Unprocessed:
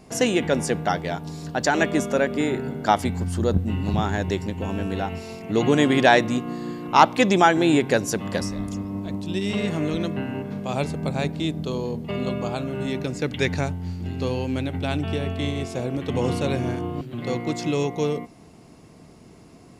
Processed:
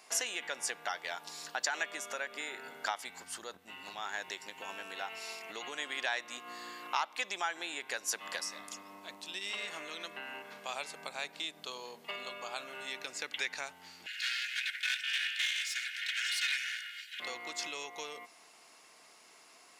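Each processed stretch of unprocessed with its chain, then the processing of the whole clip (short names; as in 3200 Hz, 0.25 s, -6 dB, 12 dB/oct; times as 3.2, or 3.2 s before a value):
14.06–17.2 minimum comb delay 2.8 ms + steep high-pass 1500 Hz 96 dB/oct + overdrive pedal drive 13 dB, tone 4400 Hz, clips at -20.5 dBFS
whole clip: compressor 6:1, threshold -27 dBFS; HPF 1200 Hz 12 dB/oct; gain +1 dB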